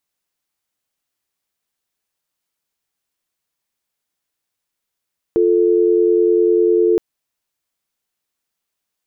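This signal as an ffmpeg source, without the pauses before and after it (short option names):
-f lavfi -i "aevalsrc='0.211*(sin(2*PI*350*t)+sin(2*PI*440*t))':d=1.62:s=44100"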